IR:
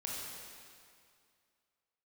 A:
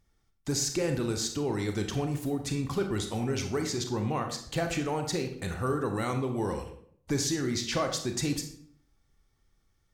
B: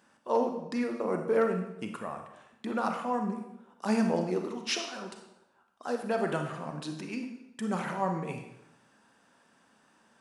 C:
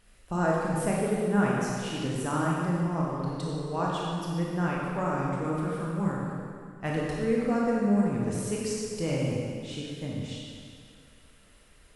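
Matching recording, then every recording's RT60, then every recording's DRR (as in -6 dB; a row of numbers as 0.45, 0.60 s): C; 0.60, 0.85, 2.2 s; 4.5, 4.0, -4.5 dB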